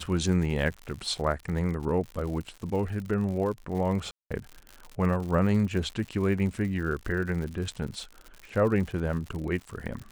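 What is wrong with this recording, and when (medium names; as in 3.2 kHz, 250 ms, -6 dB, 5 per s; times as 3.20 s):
crackle 110 per s -35 dBFS
4.11–4.31 s: dropout 196 ms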